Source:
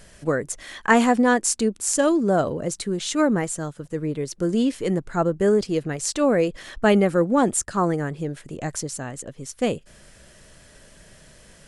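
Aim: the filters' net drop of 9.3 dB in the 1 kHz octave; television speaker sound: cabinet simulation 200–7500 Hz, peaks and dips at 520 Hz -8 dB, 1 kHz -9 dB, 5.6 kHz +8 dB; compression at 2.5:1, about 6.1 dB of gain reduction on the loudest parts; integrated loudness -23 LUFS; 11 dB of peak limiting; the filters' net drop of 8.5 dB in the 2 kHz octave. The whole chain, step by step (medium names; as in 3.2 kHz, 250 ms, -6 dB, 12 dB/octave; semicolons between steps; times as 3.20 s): peaking EQ 1 kHz -7 dB; peaking EQ 2 kHz -7.5 dB; compression 2.5:1, threshold -24 dBFS; peak limiter -21 dBFS; cabinet simulation 200–7500 Hz, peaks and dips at 520 Hz -8 dB, 1 kHz -9 dB, 5.6 kHz +8 dB; trim +10 dB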